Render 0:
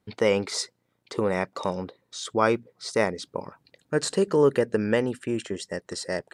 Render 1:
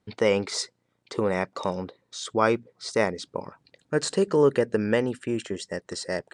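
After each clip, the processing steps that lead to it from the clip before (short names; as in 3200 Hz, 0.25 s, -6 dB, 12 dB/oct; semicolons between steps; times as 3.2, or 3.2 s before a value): LPF 9500 Hz 24 dB/oct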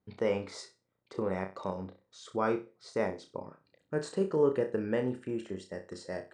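high shelf 2000 Hz -10.5 dB; flutter echo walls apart 5.4 m, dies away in 0.28 s; gain -7.5 dB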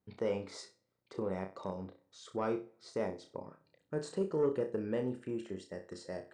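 on a send at -24 dB: reverb RT60 0.90 s, pre-delay 3 ms; on the sum: dynamic EQ 1700 Hz, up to -5 dB, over -47 dBFS, Q 1; soft clip -19 dBFS, distortion -22 dB; gain -3 dB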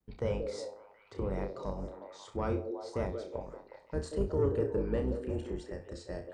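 octaver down 2 oct, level +3 dB; vibrato 0.79 Hz 44 cents; delay with a stepping band-pass 0.181 s, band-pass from 410 Hz, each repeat 0.7 oct, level -3.5 dB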